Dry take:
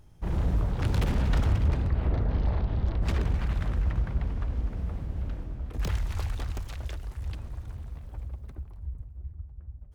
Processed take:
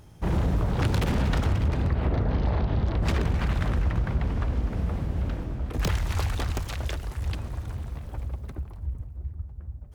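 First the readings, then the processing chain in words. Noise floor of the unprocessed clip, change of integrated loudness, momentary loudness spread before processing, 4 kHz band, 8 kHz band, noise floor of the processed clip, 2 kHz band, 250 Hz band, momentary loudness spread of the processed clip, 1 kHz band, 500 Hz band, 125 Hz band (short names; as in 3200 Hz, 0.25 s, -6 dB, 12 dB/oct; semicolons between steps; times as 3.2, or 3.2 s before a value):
-47 dBFS, +2.5 dB, 15 LU, +6.5 dB, n/a, -42 dBFS, +6.0 dB, +5.5 dB, 11 LU, +6.0 dB, +6.0 dB, +2.5 dB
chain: HPF 87 Hz 6 dB/oct; compressor, threshold -29 dBFS, peak gain reduction 7 dB; gain +9 dB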